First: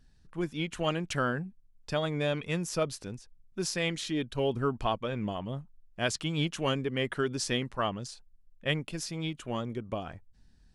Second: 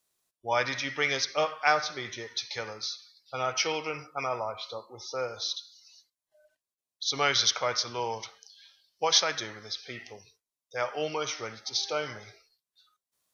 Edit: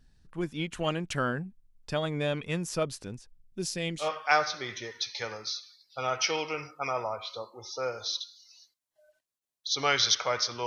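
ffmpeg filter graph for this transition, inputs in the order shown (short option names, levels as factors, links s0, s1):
-filter_complex "[0:a]asettb=1/sr,asplit=3[s0][s1][s2];[s0]atrim=end=3.404[s3];[s1]atrim=start=3.4:end=4.12,asetpts=PTS-STARTPTS,afade=t=in:d=0.004:c=qsin,afade=t=out:st=0.716:d=0.004:c=qsin,equalizer=f=1200:t=o:w=1.5:g=-10.5[s4];[s2]atrim=start=4.116[s5];[s3][s4]acrossfade=d=0.004:c1=hsin:c2=qsin[s6];[s6][s5]acrossfade=d=0.004:c1=qsin:c2=hsin,apad=whole_dur=10.66,atrim=end=10.66,atrim=end=4.12,asetpts=PTS-STARTPTS[s7];[1:a]atrim=start=1.32:end=8.02,asetpts=PTS-STARTPTS[s8];[s7][s8]acrossfade=d=0.16:c1=tri:c2=tri"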